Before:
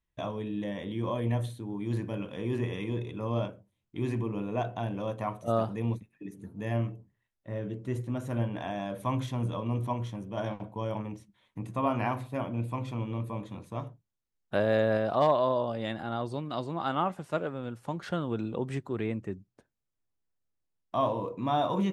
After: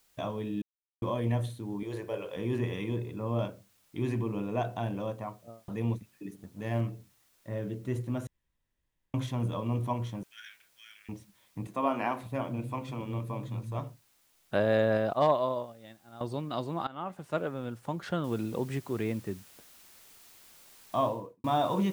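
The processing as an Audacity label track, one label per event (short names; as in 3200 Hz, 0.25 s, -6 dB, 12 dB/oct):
0.620000	1.020000	mute
1.830000	2.360000	resonant low shelf 330 Hz -9 dB, Q 3
2.960000	3.390000	air absorption 330 m
4.890000	5.680000	studio fade out
6.360000	6.810000	G.711 law mismatch coded by A
8.270000	9.140000	room tone
10.230000	11.090000	steep high-pass 1500 Hz 72 dB/oct
11.670000	13.790000	bands offset in time highs, lows 0.56 s, split 180 Hz
15.130000	16.210000	expander -23 dBFS
16.870000	17.400000	fade in, from -21 dB
18.240000	18.240000	noise floor step -68 dB -56 dB
20.970000	21.440000	studio fade out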